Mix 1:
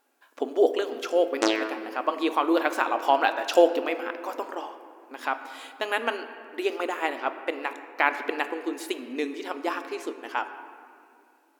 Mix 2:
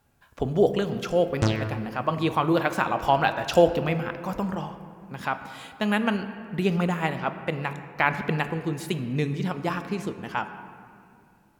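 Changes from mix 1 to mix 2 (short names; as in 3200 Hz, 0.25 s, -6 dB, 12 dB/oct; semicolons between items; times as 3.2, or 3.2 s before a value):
background -5.0 dB; master: remove brick-wall FIR high-pass 250 Hz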